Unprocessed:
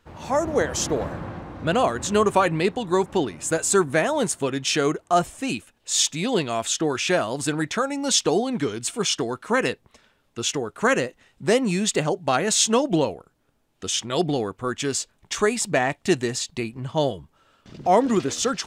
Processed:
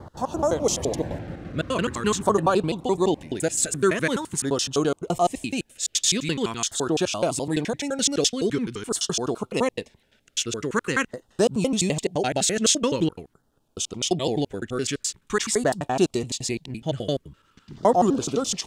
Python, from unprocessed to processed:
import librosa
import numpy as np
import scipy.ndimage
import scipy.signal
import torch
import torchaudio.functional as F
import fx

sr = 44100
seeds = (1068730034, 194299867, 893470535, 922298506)

y = fx.block_reorder(x, sr, ms=85.0, group=2)
y = fx.filter_lfo_notch(y, sr, shape='saw_down', hz=0.45, low_hz=560.0, high_hz=2600.0, q=1.1)